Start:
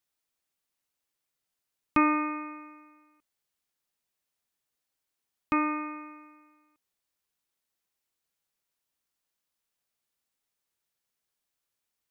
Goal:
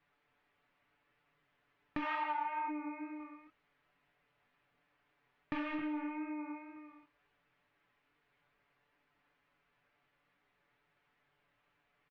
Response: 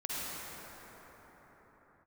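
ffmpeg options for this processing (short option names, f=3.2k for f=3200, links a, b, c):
-filter_complex "[0:a]tiltshelf=f=1.1k:g=4,aecho=1:1:268:0.447,asoftclip=type=tanh:threshold=-36.5dB,flanger=delay=7:depth=4.1:regen=-76:speed=0.73:shape=triangular,asplit=3[a][b][c];[a]afade=t=out:st=2.01:d=0.02[d];[b]highpass=f=870:t=q:w=4.9,afade=t=in:st=2.01:d=0.02,afade=t=out:st=2.67:d=0.02[e];[c]afade=t=in:st=2.67:d=0.02[f];[d][e][f]amix=inputs=3:normalize=0,flanger=delay=19.5:depth=5.1:speed=2.2,lowpass=f=2.2k:w=0.5412,lowpass=f=2.2k:w=1.3066,aecho=1:1:6.9:0.86,acompressor=threshold=-55dB:ratio=6,crystalizer=i=8:c=0,volume=16dB"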